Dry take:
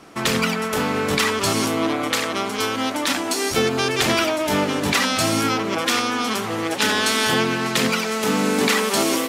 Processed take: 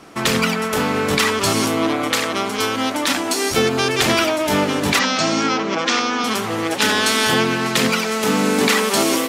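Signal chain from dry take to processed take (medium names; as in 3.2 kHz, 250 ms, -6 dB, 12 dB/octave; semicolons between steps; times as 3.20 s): 4.99–6.24 s: elliptic band-pass 150–6300 Hz, stop band 40 dB; trim +2.5 dB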